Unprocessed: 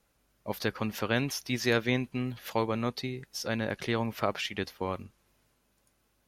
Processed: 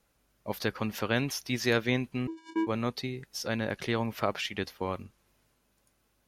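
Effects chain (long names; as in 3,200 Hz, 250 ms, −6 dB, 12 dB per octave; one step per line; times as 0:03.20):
0:02.27–0:02.67: channel vocoder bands 4, square 325 Hz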